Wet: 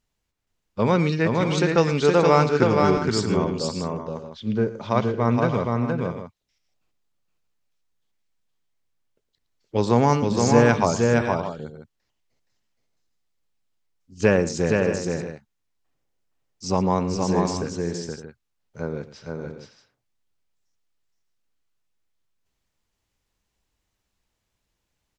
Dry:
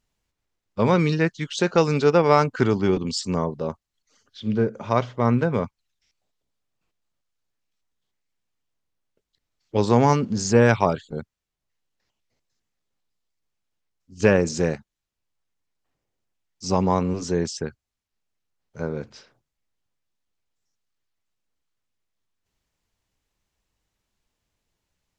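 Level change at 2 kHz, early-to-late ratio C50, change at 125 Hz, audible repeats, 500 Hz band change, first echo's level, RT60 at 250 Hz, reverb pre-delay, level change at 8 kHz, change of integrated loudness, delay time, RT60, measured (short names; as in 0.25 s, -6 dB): +1.0 dB, none, +1.0 dB, 4, +1.0 dB, -16.0 dB, none, none, +1.0 dB, 0.0 dB, 0.113 s, none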